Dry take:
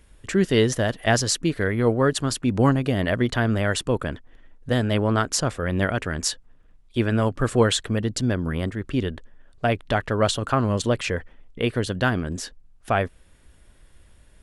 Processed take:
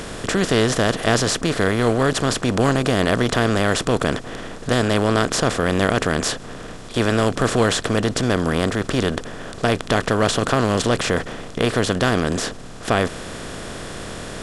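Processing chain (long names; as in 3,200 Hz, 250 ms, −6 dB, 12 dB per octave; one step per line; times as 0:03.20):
compressor on every frequency bin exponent 0.4
level −3 dB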